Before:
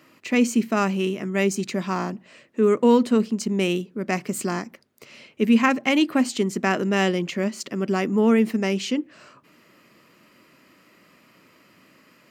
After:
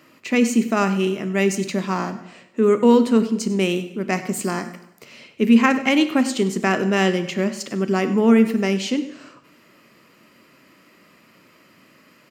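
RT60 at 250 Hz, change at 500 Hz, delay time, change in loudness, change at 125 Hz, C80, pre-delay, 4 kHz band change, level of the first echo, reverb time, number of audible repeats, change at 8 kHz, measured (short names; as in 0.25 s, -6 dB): 0.95 s, +2.5 dB, 98 ms, +3.0 dB, +2.5 dB, 13.0 dB, 5 ms, +2.5 dB, -16.0 dB, 0.95 s, 1, +2.5 dB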